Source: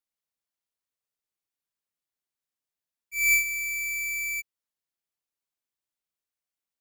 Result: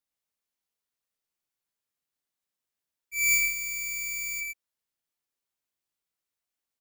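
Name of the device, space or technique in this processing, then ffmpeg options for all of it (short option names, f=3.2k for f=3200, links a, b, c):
slapback doubling: -filter_complex "[0:a]asplit=3[a][b][c];[b]adelay=23,volume=-6dB[d];[c]adelay=114,volume=-4.5dB[e];[a][d][e]amix=inputs=3:normalize=0"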